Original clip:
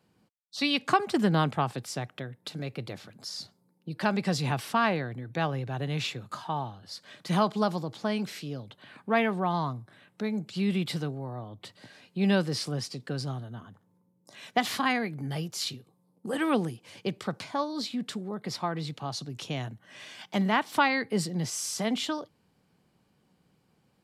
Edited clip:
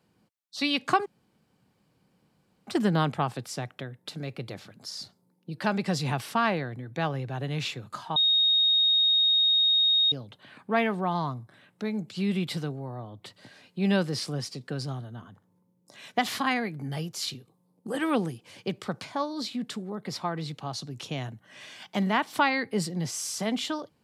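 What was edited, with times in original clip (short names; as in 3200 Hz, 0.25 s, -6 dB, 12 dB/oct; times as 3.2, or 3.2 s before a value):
1.06 insert room tone 1.61 s
6.55–8.51 bleep 3730 Hz -19 dBFS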